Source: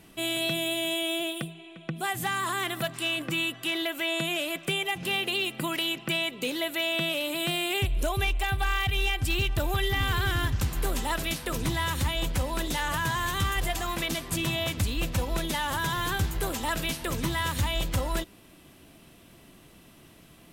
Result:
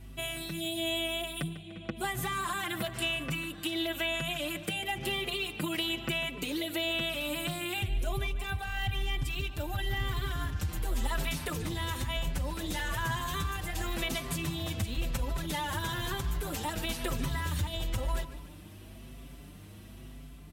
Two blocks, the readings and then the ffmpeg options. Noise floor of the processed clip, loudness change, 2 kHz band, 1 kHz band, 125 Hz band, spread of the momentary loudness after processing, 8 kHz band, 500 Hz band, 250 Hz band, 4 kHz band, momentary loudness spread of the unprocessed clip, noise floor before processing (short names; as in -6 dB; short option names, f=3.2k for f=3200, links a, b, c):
-48 dBFS, -5.0 dB, -5.5 dB, -6.0 dB, -4.0 dB, 11 LU, -5.5 dB, -5.0 dB, -4.0 dB, -5.0 dB, 4 LU, -54 dBFS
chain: -filter_complex "[0:a]highpass=49,lowshelf=f=83:g=10,dynaudnorm=f=710:g=3:m=4dB,alimiter=limit=-15.5dB:level=0:latency=1:release=27,acompressor=threshold=-26dB:ratio=6,aeval=exprs='val(0)+0.00708*(sin(2*PI*50*n/s)+sin(2*PI*2*50*n/s)/2+sin(2*PI*3*50*n/s)/3+sin(2*PI*4*50*n/s)/4+sin(2*PI*5*50*n/s)/5)':c=same,asplit=2[a][b];[b]adelay=148,lowpass=f=4.9k:p=1,volume=-13dB,asplit=2[c][d];[d]adelay=148,lowpass=f=4.9k:p=1,volume=0.53,asplit=2[e][f];[f]adelay=148,lowpass=f=4.9k:p=1,volume=0.53,asplit=2[g][h];[h]adelay=148,lowpass=f=4.9k:p=1,volume=0.53,asplit=2[i][j];[j]adelay=148,lowpass=f=4.9k:p=1,volume=0.53[k];[c][e][g][i][k]amix=inputs=5:normalize=0[l];[a][l]amix=inputs=2:normalize=0,asplit=2[m][n];[n]adelay=5.7,afreqshift=1[o];[m][o]amix=inputs=2:normalize=1,volume=-1dB"